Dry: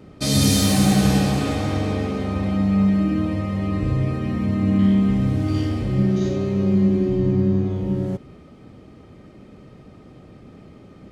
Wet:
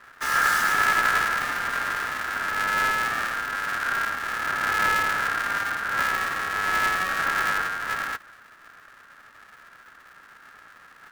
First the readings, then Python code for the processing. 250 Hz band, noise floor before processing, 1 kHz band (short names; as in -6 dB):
-25.5 dB, -46 dBFS, +9.0 dB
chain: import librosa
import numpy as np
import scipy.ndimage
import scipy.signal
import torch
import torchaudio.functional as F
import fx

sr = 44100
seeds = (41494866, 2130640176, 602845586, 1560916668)

y = fx.halfwave_hold(x, sr)
y = y * np.sin(2.0 * np.pi * 1500.0 * np.arange(len(y)) / sr)
y = F.gain(torch.from_numpy(y), -7.0).numpy()